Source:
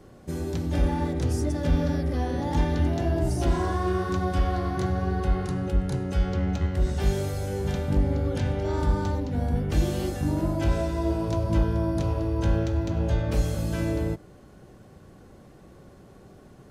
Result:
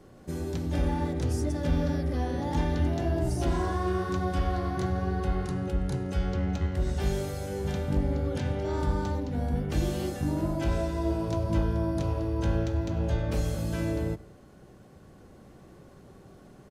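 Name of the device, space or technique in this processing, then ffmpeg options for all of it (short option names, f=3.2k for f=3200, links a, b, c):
ducked delay: -filter_complex "[0:a]bandreject=f=50:t=h:w=6,bandreject=f=100:t=h:w=6,asplit=3[a][b][c];[b]adelay=168,volume=-4dB[d];[c]apad=whole_len=743964[e];[d][e]sidechaincompress=threshold=-43dB:ratio=8:attack=16:release=1100[f];[a][f]amix=inputs=2:normalize=0,volume=-2.5dB"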